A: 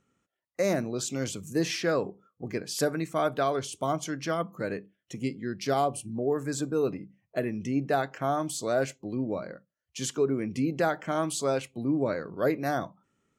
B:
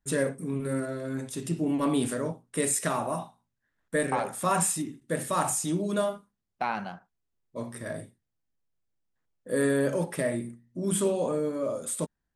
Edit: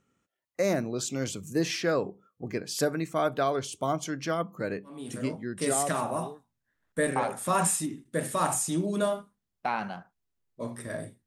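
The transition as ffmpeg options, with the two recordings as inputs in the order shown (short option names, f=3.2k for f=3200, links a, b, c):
-filter_complex "[0:a]apad=whole_dur=11.26,atrim=end=11.26,atrim=end=6.45,asetpts=PTS-STARTPTS[a];[1:a]atrim=start=1.77:end=8.22,asetpts=PTS-STARTPTS[b];[a][b]acrossfade=d=1.64:c1=qsin:c2=qsin"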